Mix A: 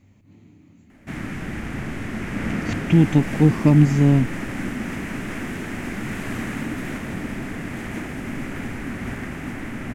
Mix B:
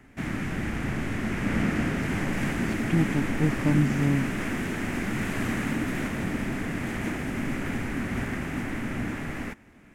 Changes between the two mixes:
speech −9.5 dB
background: entry −0.90 s

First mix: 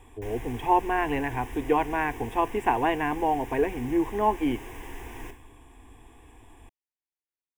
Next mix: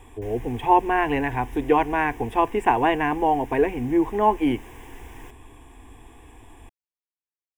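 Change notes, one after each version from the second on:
speech +4.5 dB
reverb: off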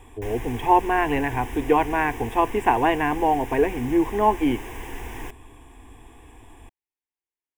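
background +8.5 dB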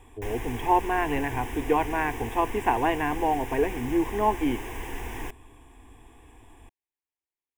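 speech −4.5 dB

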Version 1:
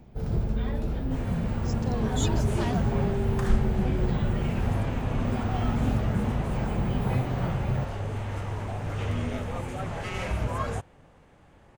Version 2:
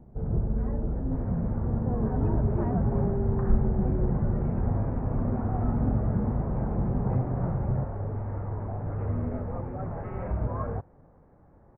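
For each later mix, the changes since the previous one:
master: add Gaussian smoothing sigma 6.8 samples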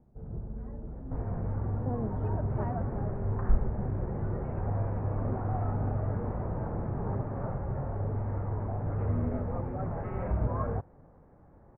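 first sound −11.5 dB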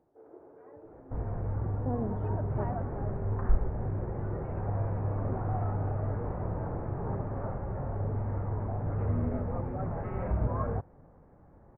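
first sound: add linear-phase brick-wall high-pass 270 Hz
reverb: on, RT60 0.50 s

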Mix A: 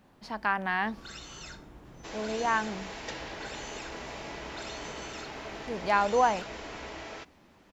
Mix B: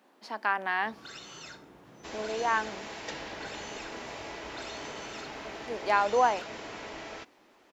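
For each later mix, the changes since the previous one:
speech: add high-pass filter 270 Hz 24 dB per octave
first sound: add band-pass filter 150–7,100 Hz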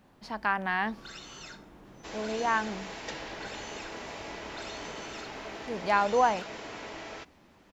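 speech: remove high-pass filter 270 Hz 24 dB per octave

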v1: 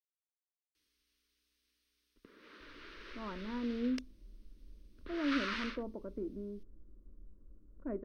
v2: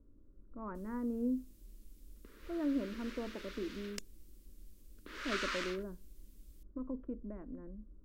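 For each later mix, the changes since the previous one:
speech: entry −2.60 s
master: remove Savitzky-Golay smoothing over 15 samples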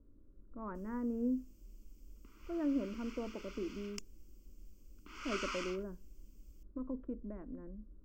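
background: add phaser with its sweep stopped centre 2,600 Hz, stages 8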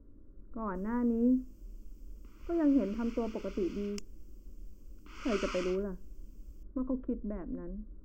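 speech +7.0 dB

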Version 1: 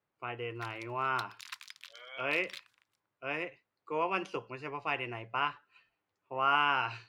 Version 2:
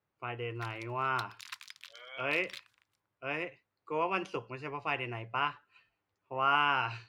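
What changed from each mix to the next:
master: add parametric band 69 Hz +9.5 dB 1.4 octaves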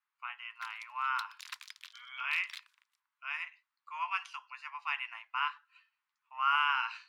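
speech: add Butterworth high-pass 960 Hz 48 dB per octave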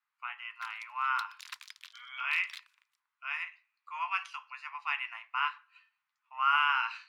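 reverb: on

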